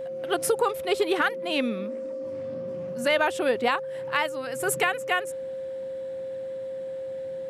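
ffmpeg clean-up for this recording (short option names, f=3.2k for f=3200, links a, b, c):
-af "bandreject=f=530:w=30"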